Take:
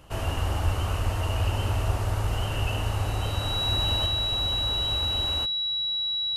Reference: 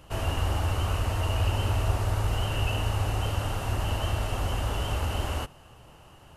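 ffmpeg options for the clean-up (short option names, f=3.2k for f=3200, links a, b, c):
-filter_complex "[0:a]bandreject=f=3.9k:w=30,asplit=3[a][b][c];[a]afade=t=out:st=0.64:d=0.02[d];[b]highpass=f=140:w=0.5412,highpass=f=140:w=1.3066,afade=t=in:st=0.64:d=0.02,afade=t=out:st=0.76:d=0.02[e];[c]afade=t=in:st=0.76:d=0.02[f];[d][e][f]amix=inputs=3:normalize=0,asplit=3[g][h][i];[g]afade=t=out:st=1.03:d=0.02[j];[h]highpass=f=140:w=0.5412,highpass=f=140:w=1.3066,afade=t=in:st=1.03:d=0.02,afade=t=out:st=1.15:d=0.02[k];[i]afade=t=in:st=1.15:d=0.02[l];[j][k][l]amix=inputs=3:normalize=0,asetnsamples=n=441:p=0,asendcmd='4.06 volume volume 3.5dB',volume=0dB"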